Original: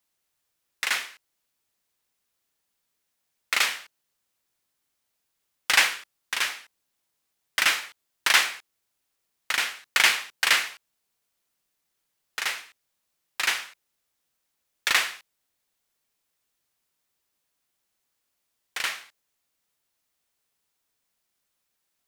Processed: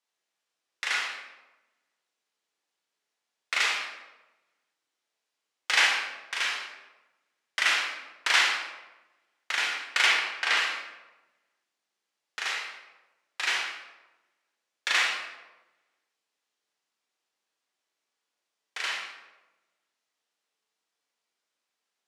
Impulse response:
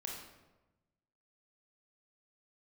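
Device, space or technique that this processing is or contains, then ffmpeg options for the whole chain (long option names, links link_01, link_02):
supermarket ceiling speaker: -filter_complex "[0:a]asettb=1/sr,asplit=3[link_01][link_02][link_03];[link_01]atrim=end=10.064[link_04];[link_02]atrim=start=10.06:end=10.57,asetpts=PTS-STARTPTS,afade=type=in:duration=0.004:curve=qsin,afade=type=out:start_time=0.506:duration=0.004:curve=qsin,aemphasis=mode=reproduction:type=cd[link_05];[link_03]atrim=start=10.566[link_06];[link_04][link_05]acrossfade=duration=0.004:curve1=hsin:curve2=qsin[link_07];[link_07][link_06]acrossfade=duration=0.004:curve1=qsin:curve2=hsin,highpass=310,lowpass=6800[link_08];[1:a]atrim=start_sample=2205[link_09];[link_08][link_09]afir=irnorm=-1:irlink=0"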